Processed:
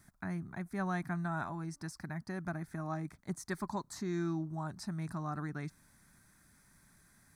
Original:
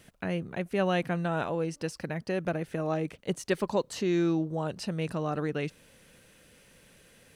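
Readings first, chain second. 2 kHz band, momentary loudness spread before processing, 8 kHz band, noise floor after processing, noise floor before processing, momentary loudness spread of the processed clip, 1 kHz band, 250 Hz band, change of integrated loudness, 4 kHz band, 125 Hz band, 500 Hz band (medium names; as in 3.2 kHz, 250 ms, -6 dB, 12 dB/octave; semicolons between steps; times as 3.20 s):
-6.5 dB, 7 LU, -5.5 dB, -67 dBFS, -59 dBFS, 7 LU, -6.0 dB, -7.5 dB, -8.0 dB, -13.0 dB, -5.0 dB, -14.5 dB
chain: static phaser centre 1.2 kHz, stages 4; trim -3.5 dB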